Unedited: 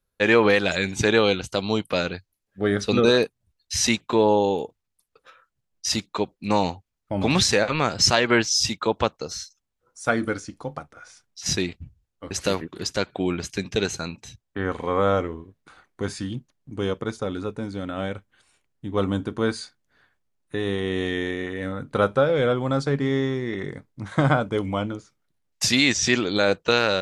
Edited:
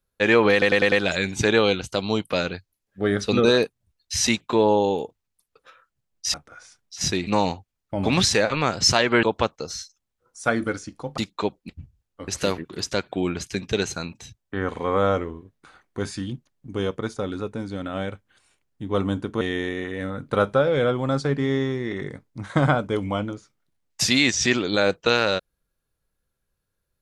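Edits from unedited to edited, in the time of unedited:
0.52 stutter 0.10 s, 5 plays
5.94–6.45 swap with 10.79–11.72
8.41–8.84 cut
19.44–21.03 cut

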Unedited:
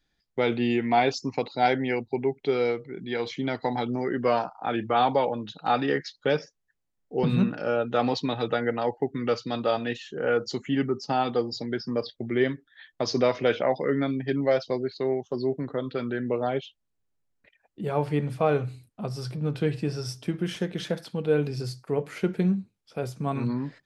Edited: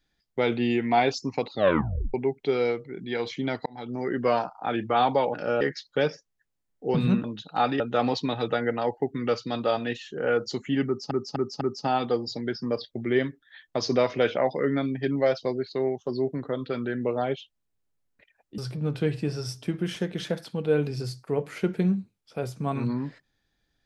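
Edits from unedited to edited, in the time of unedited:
1.52 tape stop 0.62 s
3.66–4.1 fade in
5.34–5.9 swap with 7.53–7.8
10.86–11.11 loop, 4 plays
17.83–19.18 cut

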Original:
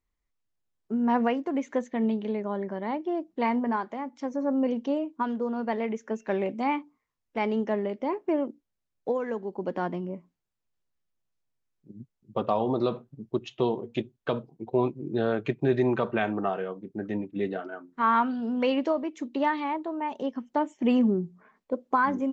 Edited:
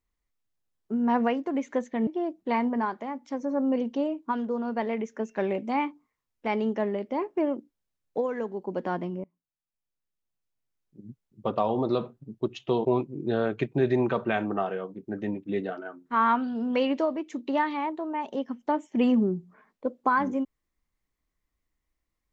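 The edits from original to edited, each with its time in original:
2.07–2.98 cut
10.15–12 fade in, from -21.5 dB
13.76–14.72 cut

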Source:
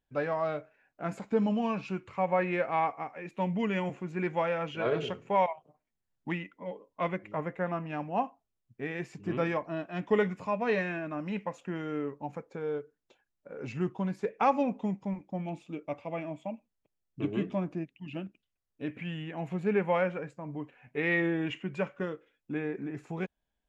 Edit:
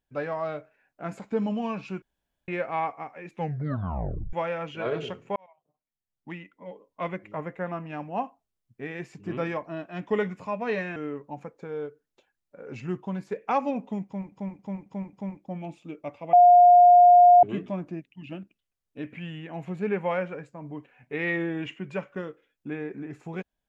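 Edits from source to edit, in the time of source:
2.02–2.48 room tone
3.31 tape stop 1.02 s
5.36–7.12 fade in
10.96–11.88 cut
14.97–15.24 loop, 5 plays
16.17–17.27 bleep 710 Hz -10.5 dBFS

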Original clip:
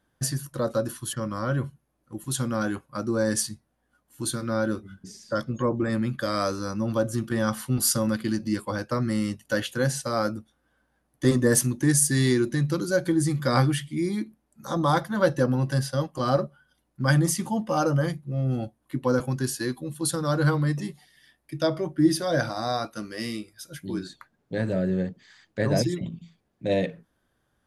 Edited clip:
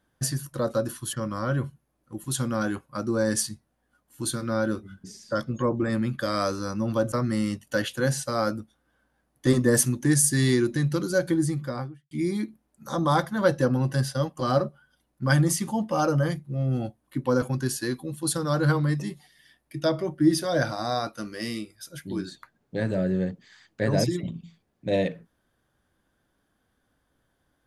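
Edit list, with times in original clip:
7.12–8.9 cut
13.02–13.89 studio fade out

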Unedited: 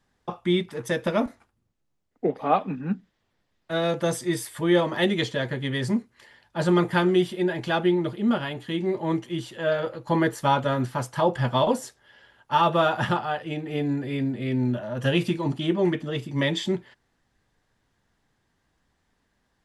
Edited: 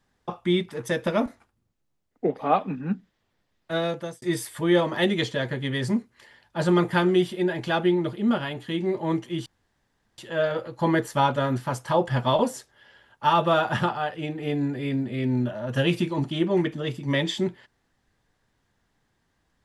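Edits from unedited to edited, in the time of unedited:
3.76–4.22 fade out
9.46 insert room tone 0.72 s

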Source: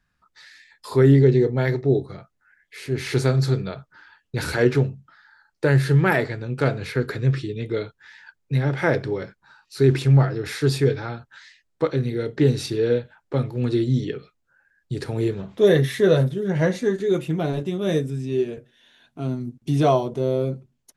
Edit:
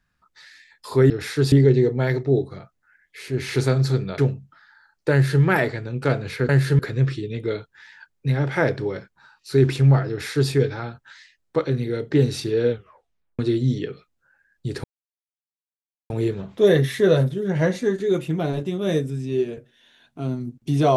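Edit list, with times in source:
3.76–4.74 cut
5.68–5.98 copy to 7.05
10.35–10.77 copy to 1.1
12.96 tape stop 0.69 s
15.1 insert silence 1.26 s

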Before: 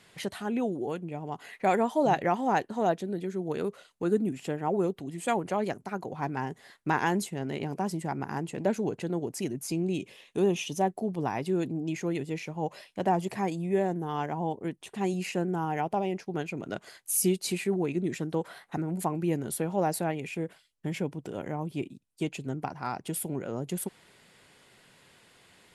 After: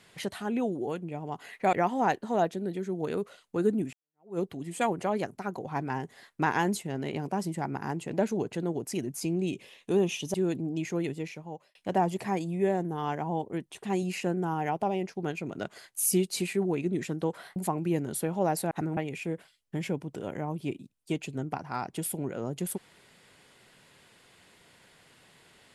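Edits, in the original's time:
1.73–2.2 cut
4.4–4.86 fade in exponential
10.81–11.45 cut
12.2–12.86 fade out
18.67–18.93 move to 20.08

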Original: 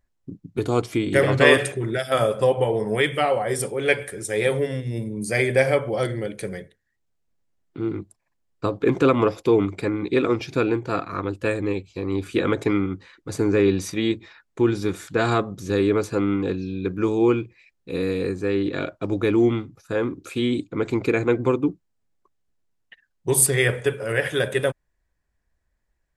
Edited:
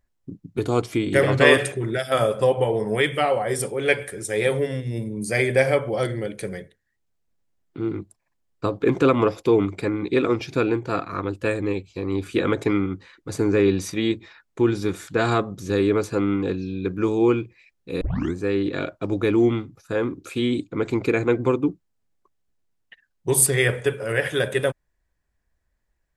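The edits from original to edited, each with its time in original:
18.01 tape start 0.34 s

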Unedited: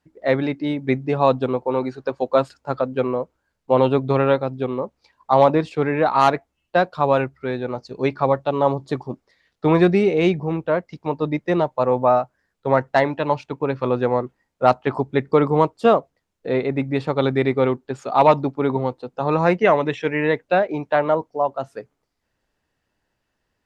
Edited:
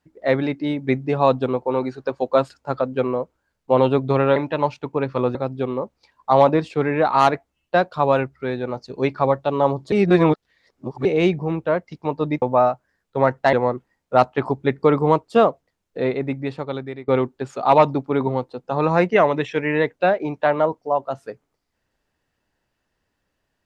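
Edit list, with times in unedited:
8.93–10.06 reverse
11.43–11.92 cut
13.03–14.02 move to 4.36
16.47–17.57 fade out, to -20.5 dB

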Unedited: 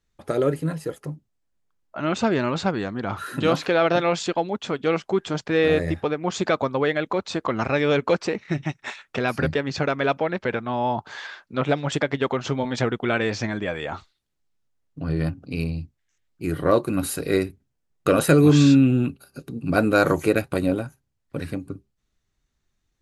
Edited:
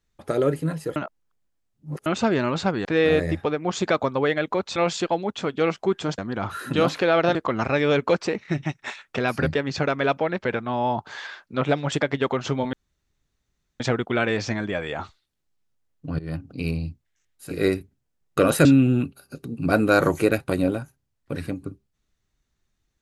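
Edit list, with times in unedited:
0.96–2.06 reverse
2.85–4.02 swap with 5.44–7.35
12.73 insert room tone 1.07 s
15.12–15.4 fade in, from -19.5 dB
16.44–17.2 cut, crossfade 0.24 s
18.34–18.69 cut

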